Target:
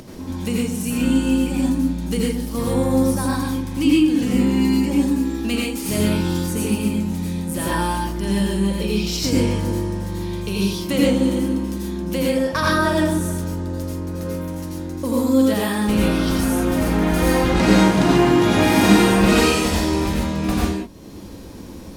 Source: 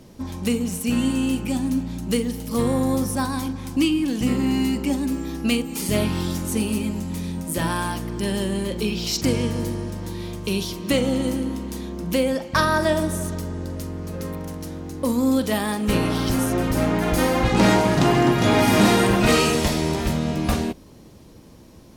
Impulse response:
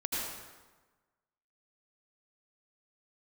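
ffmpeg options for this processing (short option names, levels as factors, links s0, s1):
-filter_complex "[0:a]acompressor=mode=upward:threshold=0.0355:ratio=2.5[s0];[1:a]atrim=start_sample=2205,atrim=end_sample=6615[s1];[s0][s1]afir=irnorm=-1:irlink=0,volume=0.794"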